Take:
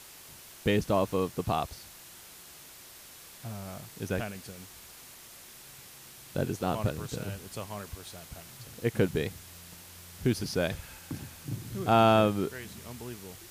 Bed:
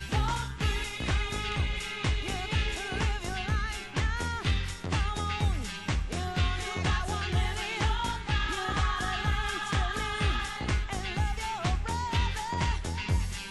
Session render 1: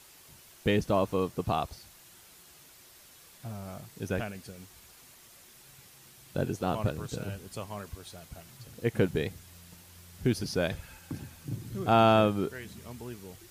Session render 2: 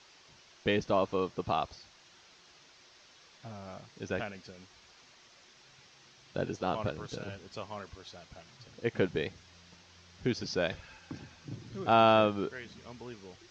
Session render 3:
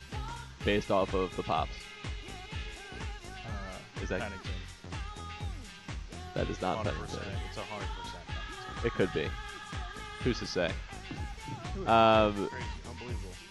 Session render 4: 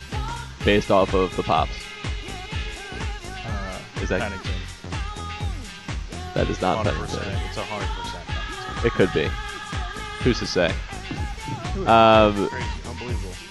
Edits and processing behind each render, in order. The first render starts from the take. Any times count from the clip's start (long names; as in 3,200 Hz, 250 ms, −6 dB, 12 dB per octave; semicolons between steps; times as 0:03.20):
broadband denoise 6 dB, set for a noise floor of −50 dBFS
Butterworth low-pass 6,200 Hz 48 dB per octave; low-shelf EQ 220 Hz −9.5 dB
mix in bed −11 dB
level +10.5 dB; brickwall limiter −3 dBFS, peak gain reduction 2 dB